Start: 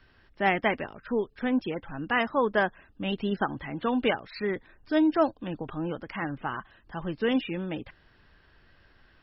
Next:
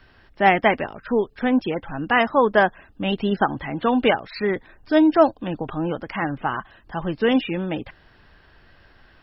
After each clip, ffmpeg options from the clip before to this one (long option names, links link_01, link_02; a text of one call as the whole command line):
ffmpeg -i in.wav -af "equalizer=frequency=740:width=2:gain=3.5,volume=6.5dB" out.wav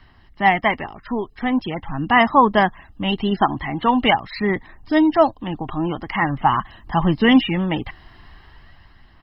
ffmpeg -i in.wav -af "aecho=1:1:1:0.58,dynaudnorm=framelen=160:gausssize=11:maxgain=10dB,aphaser=in_gain=1:out_gain=1:delay=2.9:decay=0.27:speed=0.43:type=sinusoidal,volume=-2dB" out.wav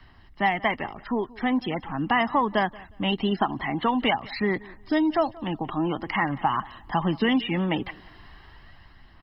ffmpeg -i in.wav -filter_complex "[0:a]acrossover=split=150|3700[link_01][link_02][link_03];[link_01]acompressor=threshold=-44dB:ratio=4[link_04];[link_02]acompressor=threshold=-19dB:ratio=4[link_05];[link_03]acompressor=threshold=-39dB:ratio=4[link_06];[link_04][link_05][link_06]amix=inputs=3:normalize=0,aecho=1:1:180|360:0.0794|0.0183,volume=-1.5dB" out.wav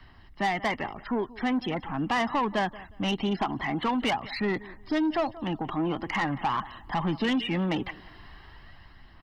ffmpeg -i in.wav -af "asoftclip=type=tanh:threshold=-21dB" out.wav